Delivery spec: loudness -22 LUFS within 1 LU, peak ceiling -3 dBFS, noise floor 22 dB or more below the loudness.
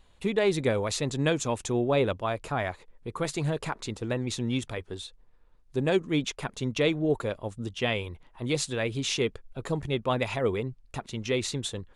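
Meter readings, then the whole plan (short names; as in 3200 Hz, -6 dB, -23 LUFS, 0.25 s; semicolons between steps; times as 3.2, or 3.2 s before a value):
loudness -29.5 LUFS; peak -12.5 dBFS; loudness target -22.0 LUFS
-> gain +7.5 dB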